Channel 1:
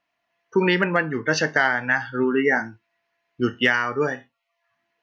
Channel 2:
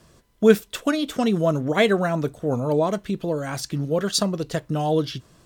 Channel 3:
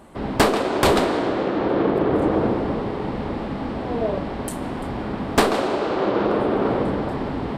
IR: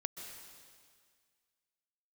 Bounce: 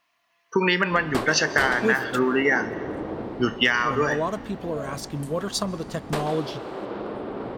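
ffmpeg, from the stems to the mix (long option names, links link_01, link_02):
-filter_complex "[0:a]highshelf=frequency=2300:gain=10,volume=0dB,asplit=2[link_01][link_02];[link_02]volume=-15.5dB[link_03];[1:a]adelay=1400,volume=-6dB,asplit=3[link_04][link_05][link_06];[link_04]atrim=end=2.19,asetpts=PTS-STARTPTS,afade=type=out:start_time=2.186:duration=0.004:curve=hsin[link_07];[link_05]atrim=start=2.19:end=3.76,asetpts=PTS-STARTPTS,volume=0[link_08];[link_06]atrim=start=3.76,asetpts=PTS-STARTPTS,afade=type=in:duration=0.004:curve=hsin[link_09];[link_07][link_08][link_09]concat=n=3:v=0:a=1,asplit=2[link_10][link_11];[link_11]volume=-17dB[link_12];[2:a]adelay=750,volume=-14dB,asplit=2[link_13][link_14];[link_14]volume=-9.5dB[link_15];[link_01][link_10]amix=inputs=2:normalize=0,equalizer=frequency=1100:width=4.9:gain=10,acompressor=threshold=-19dB:ratio=6,volume=0dB[link_16];[3:a]atrim=start_sample=2205[link_17];[link_03][link_12][link_15]amix=inputs=3:normalize=0[link_18];[link_18][link_17]afir=irnorm=-1:irlink=0[link_19];[link_13][link_16][link_19]amix=inputs=3:normalize=0"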